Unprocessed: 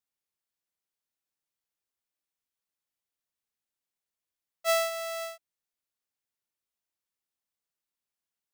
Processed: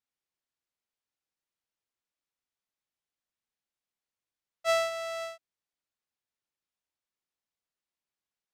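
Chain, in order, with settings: distance through air 55 m

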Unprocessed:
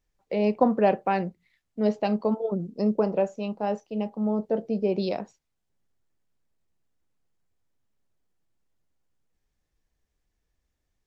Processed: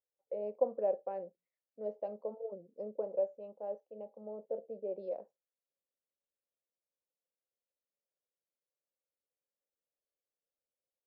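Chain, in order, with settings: band-pass filter 540 Hz, Q 6.3; trim -4.5 dB

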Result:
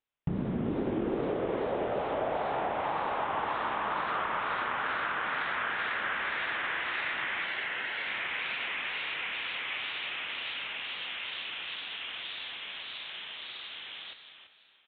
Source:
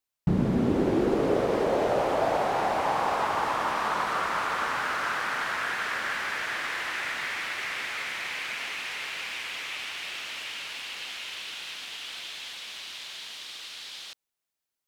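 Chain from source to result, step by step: compression 5:1, threshold -29 dBFS, peak gain reduction 9.5 dB; resampled via 8 kHz; 7.44–8.08 s: comb of notches 1.2 kHz; feedback delay 335 ms, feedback 17%, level -10 dB; reverberation RT60 4.0 s, pre-delay 80 ms, DRR 14.5 dB; wow and flutter 64 cents

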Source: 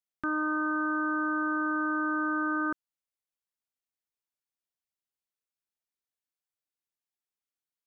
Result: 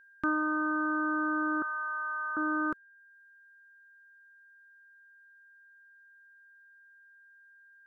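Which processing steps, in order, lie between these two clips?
reverb removal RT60 0.75 s; 1.62–2.37 s: Bessel high-pass 1.1 kHz, order 6; whistle 1.6 kHz -58 dBFS; trim +2 dB

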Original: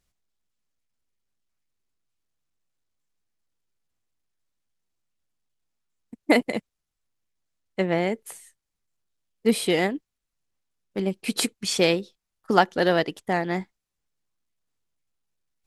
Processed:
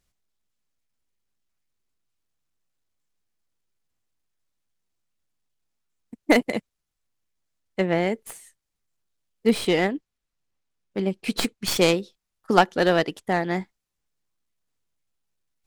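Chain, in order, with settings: tracing distortion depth 0.08 ms; 9.49–11.67 s: treble shelf 8.9 kHz -9 dB; trim +1 dB

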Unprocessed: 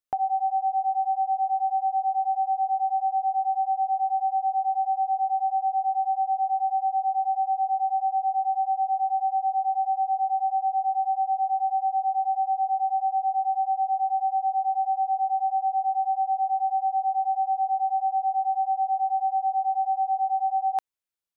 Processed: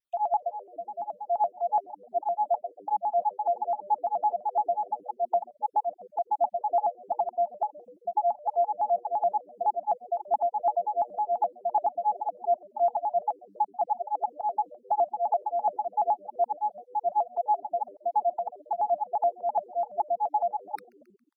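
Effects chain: random holes in the spectrogram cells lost 51%; reverb removal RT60 1.1 s; 0.52–1.27 s: Butterworth band-stop 830 Hz, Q 4; on a send: frequency-shifting echo 134 ms, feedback 59%, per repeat -110 Hz, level -21.5 dB; on the sum: tremolo 2.8 Hz, depth 45%; vibrato with a chosen wave square 5.9 Hz, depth 160 cents; trim +2.5 dB

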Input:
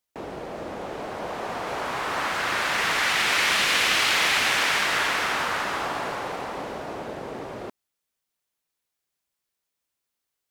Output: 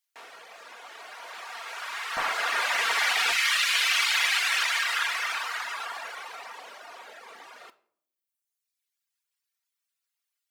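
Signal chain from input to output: high-pass 1.5 kHz 12 dB/octave, from 2.17 s 630 Hz, from 3.32 s 1.3 kHz; simulated room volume 990 m³, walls furnished, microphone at 1.7 m; reverb removal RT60 1.4 s

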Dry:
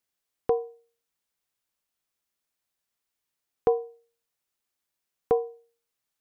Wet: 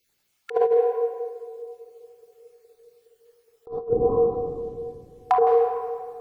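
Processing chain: random holes in the spectrogram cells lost 45%; simulated room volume 3600 m³, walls mixed, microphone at 4.2 m; 3.88–5.47 s: low-pass that closes with the level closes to 370 Hz, closed at -21 dBFS; compressor with a negative ratio -27 dBFS, ratio -0.5; band-passed feedback delay 416 ms, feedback 73%, band-pass 350 Hz, level -21.5 dB; trim +7.5 dB

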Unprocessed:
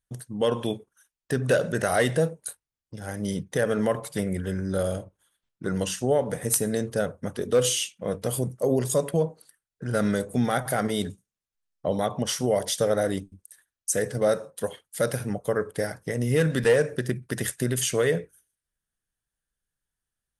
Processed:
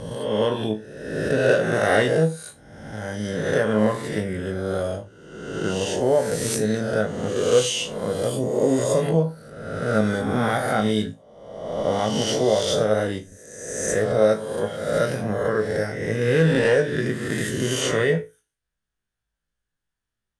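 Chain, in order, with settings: reverse spectral sustain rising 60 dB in 1.23 s; distance through air 75 m; feedback comb 54 Hz, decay 0.23 s, harmonics all, mix 90%; trim +6.5 dB

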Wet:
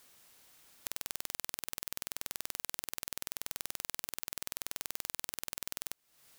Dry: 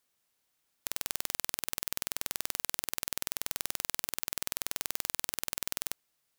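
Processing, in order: compression 12:1, threshold -48 dBFS, peak gain reduction 21 dB; trim +16 dB

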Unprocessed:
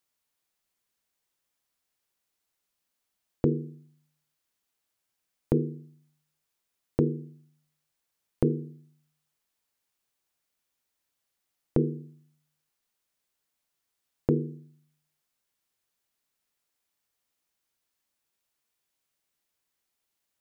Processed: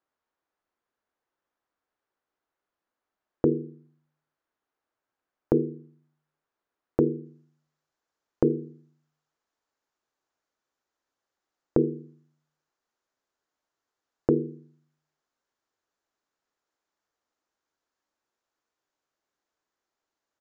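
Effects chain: tone controls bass +3 dB, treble -9 dB, from 7.24 s treble +2 dB; resampled via 16 kHz; high-order bell 670 Hz +10.5 dB 3 oct; trim -6.5 dB

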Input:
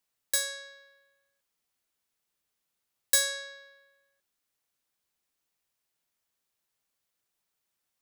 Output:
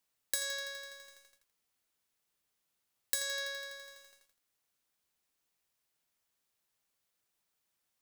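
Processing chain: compression 20:1, threshold -30 dBFS, peak gain reduction 13 dB; bit-crushed delay 83 ms, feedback 80%, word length 9-bit, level -13.5 dB

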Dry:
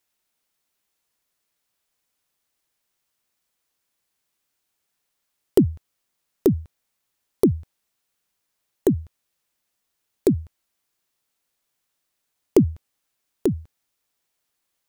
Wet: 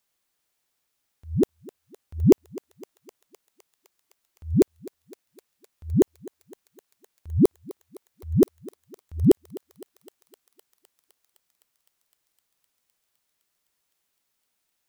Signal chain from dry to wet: reverse the whole clip; thinning echo 256 ms, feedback 83%, high-pass 550 Hz, level -17 dB

